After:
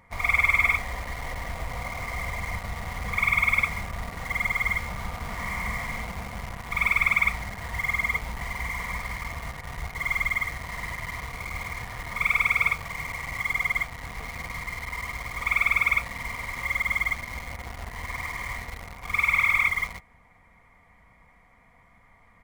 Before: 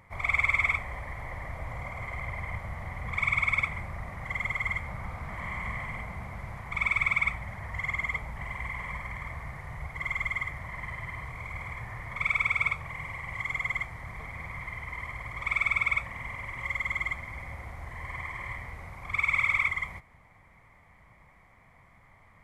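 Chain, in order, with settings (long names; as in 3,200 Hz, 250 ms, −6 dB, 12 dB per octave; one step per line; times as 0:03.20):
comb filter 4.2 ms, depth 42%
in parallel at −5 dB: bit-depth reduction 6 bits, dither none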